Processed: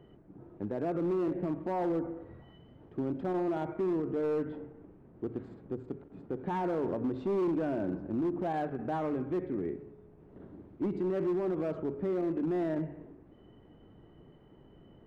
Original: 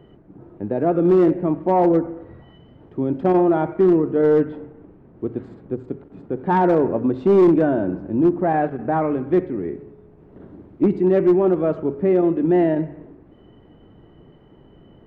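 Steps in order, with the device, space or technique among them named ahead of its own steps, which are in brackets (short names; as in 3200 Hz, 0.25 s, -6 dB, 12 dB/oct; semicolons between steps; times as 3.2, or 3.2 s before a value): limiter into clipper (limiter -16.5 dBFS, peak gain reduction 7.5 dB; hard clip -18.5 dBFS, distortion -22 dB); gain -8 dB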